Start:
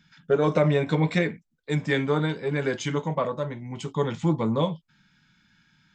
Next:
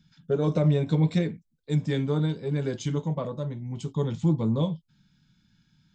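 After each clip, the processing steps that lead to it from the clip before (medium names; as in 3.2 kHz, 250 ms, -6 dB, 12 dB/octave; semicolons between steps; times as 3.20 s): FFT filter 120 Hz 0 dB, 2 kHz -17 dB, 3.8 kHz -7 dB; trim +3.5 dB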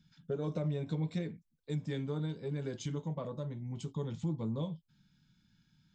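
compression 2:1, threshold -32 dBFS, peak gain reduction 8 dB; trim -5 dB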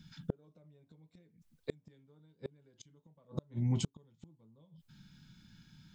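inverted gate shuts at -32 dBFS, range -37 dB; trim +10 dB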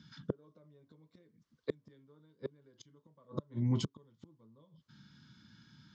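cabinet simulation 120–5600 Hz, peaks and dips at 170 Hz -8 dB, 770 Hz -9 dB, 1.1 kHz +6 dB, 2.5 kHz -9 dB, 3.9 kHz -3 dB; trim +3.5 dB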